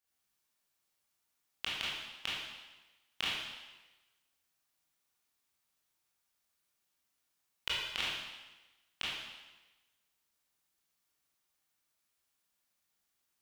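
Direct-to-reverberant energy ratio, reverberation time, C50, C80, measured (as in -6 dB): -8.5 dB, 1.2 s, -2.0 dB, 1.5 dB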